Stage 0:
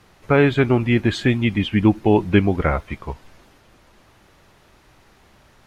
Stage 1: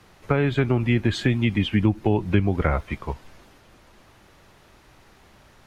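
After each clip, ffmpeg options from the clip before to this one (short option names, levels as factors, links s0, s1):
-filter_complex "[0:a]acrossover=split=140[s0][s1];[s1]acompressor=threshold=0.112:ratio=6[s2];[s0][s2]amix=inputs=2:normalize=0"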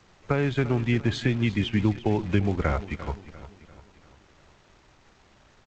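-filter_complex "[0:a]aecho=1:1:347|694|1041|1388|1735:0.178|0.0871|0.0427|0.0209|0.0103,asplit=2[s0][s1];[s1]acrusher=bits=6:dc=4:mix=0:aa=0.000001,volume=0.531[s2];[s0][s2]amix=inputs=2:normalize=0,volume=0.447" -ar 16000 -c:a g722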